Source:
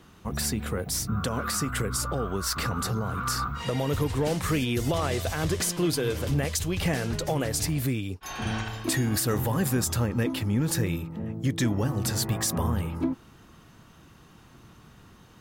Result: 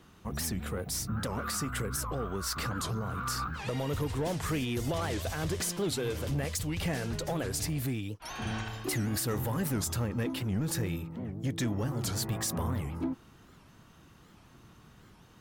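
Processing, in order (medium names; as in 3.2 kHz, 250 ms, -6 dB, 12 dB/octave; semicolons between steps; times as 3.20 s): saturation -20 dBFS, distortion -19 dB; warped record 78 rpm, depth 250 cents; trim -4 dB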